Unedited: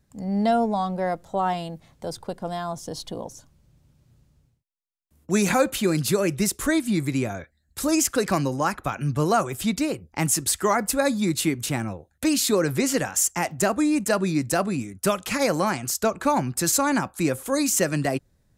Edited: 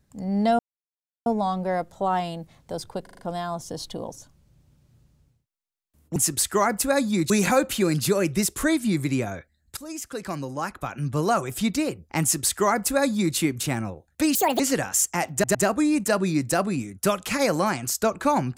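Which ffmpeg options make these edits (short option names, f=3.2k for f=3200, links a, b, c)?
-filter_complex "[0:a]asplit=13[a][b][c][d][e][f][g][h][i][j][k][l][m];[a]atrim=end=0.59,asetpts=PTS-STARTPTS,afade=t=out:st=0.586:d=0.004:c=hsin,apad=pad_dur=0.67[n];[b]atrim=start=0.59:end=2.402,asetpts=PTS-STARTPTS,afade=t=in:d=0.004:c=hsin[o];[c]atrim=start=2.358:end=2.402[p];[d]atrim=start=2.358:end=2.402[q];[e]atrim=start=2.358:end=2.402[r];[f]atrim=start=2.358:end=5.332[s];[g]atrim=start=10.248:end=11.392[t];[h]atrim=start=5.328:end=7.8,asetpts=PTS-STARTPTS,afade=t=out:st=2.468:d=0.004:c=hsin:silence=0.11885[u];[i]atrim=start=7.8:end=12.384,asetpts=PTS-STARTPTS,afade=t=in:d=1.84:silence=0.11885[v];[j]atrim=start=12.38:end=12.82,asetpts=PTS-STARTPTS,asetrate=78498,aresample=44100,atrim=end_sample=10901,asetpts=PTS-STARTPTS[w];[k]atrim=start=12.816:end=13.662[x];[l]atrim=start=13.548:end=13.662[y];[m]atrim=start=13.548[z];[n][o]concat=n=2:v=0:a=1[aa];[aa][p]acrossfade=d=0.004:c1=hsin:c2=hsin[ab];[ab][q]acrossfade=d=0.004:c1=hsin:c2=hsin[ac];[ac][r]acrossfade=d=0.004:c1=hsin:c2=hsin[ad];[ad][s]acrossfade=d=0.004:c1=hsin:c2=hsin[ae];[ae][t]acrossfade=d=0.004:c1=hsin:c2=hsin[af];[u][v]concat=n=2:v=0:a=1[ag];[af][ag]acrossfade=d=0.004:c1=hsin:c2=hsin[ah];[ah][w]acrossfade=d=0.004:c1=hsin:c2=hsin[ai];[ai][x]acrossfade=d=0.004:c1=hsin:c2=hsin[aj];[aj][y]acrossfade=d=0.004:c1=hsin:c2=hsin[ak];[ak][z]acrossfade=d=0.004:c1=hsin:c2=hsin"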